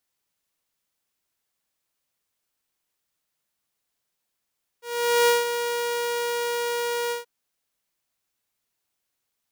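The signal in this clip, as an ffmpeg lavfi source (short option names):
-f lavfi -i "aevalsrc='0.224*(2*mod(476*t,1)-1)':d=2.429:s=44100,afade=t=in:d=0.453,afade=t=out:st=0.453:d=0.168:silence=0.355,afade=t=out:st=2.29:d=0.139"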